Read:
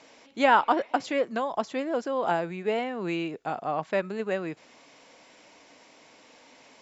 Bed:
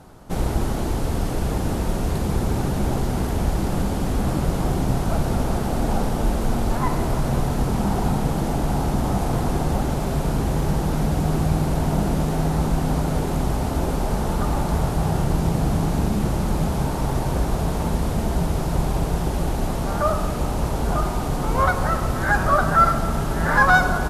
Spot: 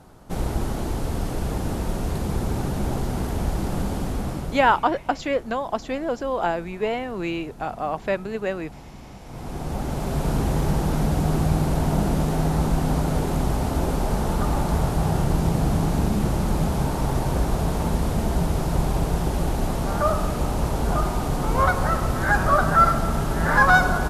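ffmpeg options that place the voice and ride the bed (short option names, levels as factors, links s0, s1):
-filter_complex "[0:a]adelay=4150,volume=1.33[s0];[1:a]volume=7.08,afade=t=out:st=3.97:d=0.91:silence=0.133352,afade=t=in:st=9.24:d=1.1:silence=0.1[s1];[s0][s1]amix=inputs=2:normalize=0"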